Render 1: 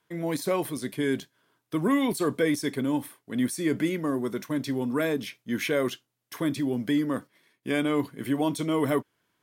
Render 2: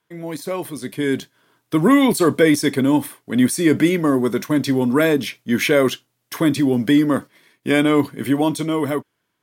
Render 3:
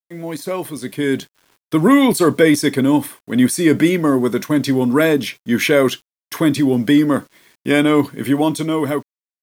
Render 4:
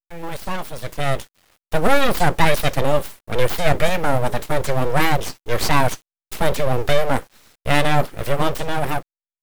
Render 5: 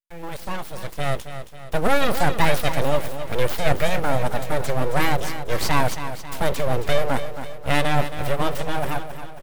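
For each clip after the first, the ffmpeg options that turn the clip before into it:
-af "dynaudnorm=f=250:g=9:m=11.5dB"
-af "acrusher=bits=8:mix=0:aa=0.000001,volume=2dB"
-af "aeval=exprs='abs(val(0))':c=same"
-af "aecho=1:1:271|542|813|1084|1355|1626:0.299|0.152|0.0776|0.0396|0.0202|0.0103,volume=-3.5dB"

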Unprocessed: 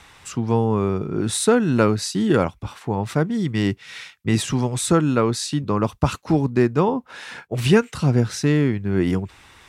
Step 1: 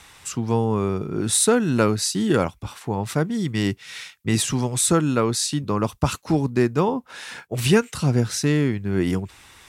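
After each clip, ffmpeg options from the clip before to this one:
-af "aemphasis=mode=production:type=cd,volume=-1.5dB"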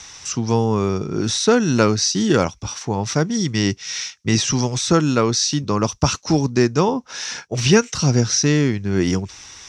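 -filter_complex "[0:a]acrossover=split=3900[a][b];[b]acompressor=threshold=-36dB:ratio=4:attack=1:release=60[c];[a][c]amix=inputs=2:normalize=0,lowpass=f=5.8k:t=q:w=8.1,volume=3dB"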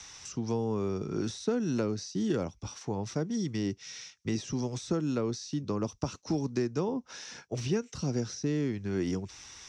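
-filter_complex "[0:a]acrossover=split=220|580[a][b][c];[a]acompressor=threshold=-28dB:ratio=4[d];[b]acompressor=threshold=-20dB:ratio=4[e];[c]acompressor=threshold=-35dB:ratio=4[f];[d][e][f]amix=inputs=3:normalize=0,volume=-8.5dB"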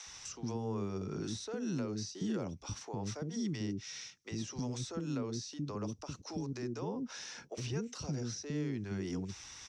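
-filter_complex "[0:a]alimiter=level_in=2dB:limit=-24dB:level=0:latency=1:release=190,volume=-2dB,acrossover=split=380[a][b];[a]adelay=60[c];[c][b]amix=inputs=2:normalize=0,volume=-1.5dB"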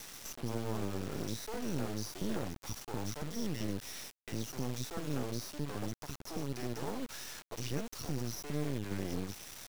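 -af "acrusher=bits=5:dc=4:mix=0:aa=0.000001,volume=3.5dB"

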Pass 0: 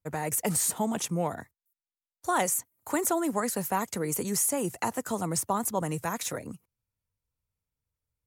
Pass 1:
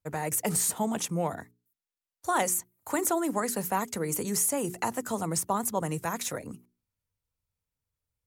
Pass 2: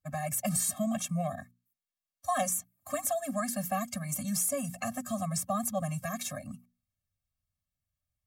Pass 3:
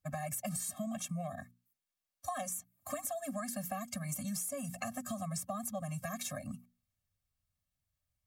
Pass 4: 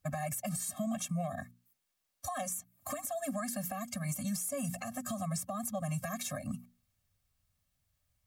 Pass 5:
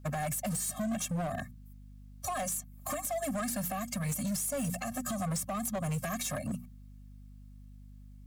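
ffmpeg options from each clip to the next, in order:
-af "bandreject=f=60:t=h:w=6,bandreject=f=120:t=h:w=6,bandreject=f=180:t=h:w=6,bandreject=f=240:t=h:w=6,bandreject=f=300:t=h:w=6,bandreject=f=360:t=h:w=6,bandreject=f=420:t=h:w=6"
-af "afftfilt=real='re*eq(mod(floor(b*sr/1024/260),2),0)':imag='im*eq(mod(floor(b*sr/1024/260),2),0)':win_size=1024:overlap=0.75"
-af "acompressor=threshold=-37dB:ratio=6,volume=1dB"
-af "alimiter=level_in=10.5dB:limit=-24dB:level=0:latency=1:release=290,volume=-10.5dB,volume=7.5dB"
-af "asoftclip=type=hard:threshold=-34.5dB,aeval=exprs='val(0)+0.002*(sin(2*PI*50*n/s)+sin(2*PI*2*50*n/s)/2+sin(2*PI*3*50*n/s)/3+sin(2*PI*4*50*n/s)/4+sin(2*PI*5*50*n/s)/5)':c=same,volume=4.5dB"

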